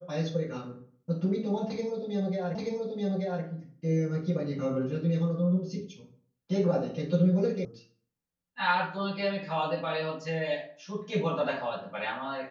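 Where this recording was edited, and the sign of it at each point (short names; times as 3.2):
2.55 repeat of the last 0.88 s
7.65 sound cut off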